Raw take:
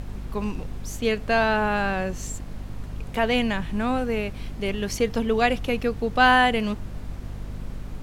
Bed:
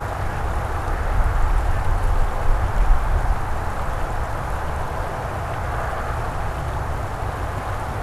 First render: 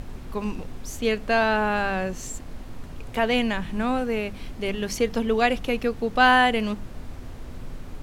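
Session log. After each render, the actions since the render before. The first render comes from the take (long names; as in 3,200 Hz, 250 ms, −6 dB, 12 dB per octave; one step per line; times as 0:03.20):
hum removal 50 Hz, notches 4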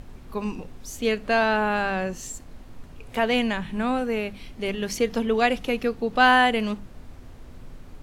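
noise reduction from a noise print 6 dB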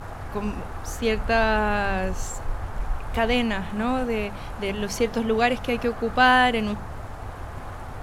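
mix in bed −11 dB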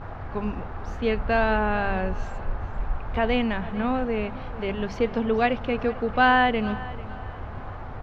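high-frequency loss of the air 270 metres
repeating echo 444 ms, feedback 36%, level −18 dB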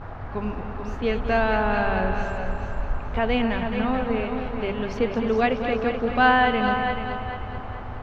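delay that plays each chunk backwards 223 ms, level −10.5 dB
on a send: echo machine with several playback heads 216 ms, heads first and second, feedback 45%, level −10 dB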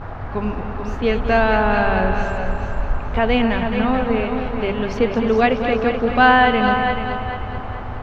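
level +5.5 dB
brickwall limiter −2 dBFS, peak gain reduction 1 dB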